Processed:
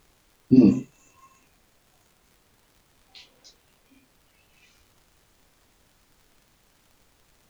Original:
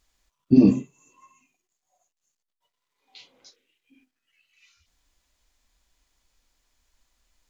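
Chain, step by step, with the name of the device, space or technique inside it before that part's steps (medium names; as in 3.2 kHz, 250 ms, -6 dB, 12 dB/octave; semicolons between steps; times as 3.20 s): vinyl LP (crackle; pink noise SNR 34 dB)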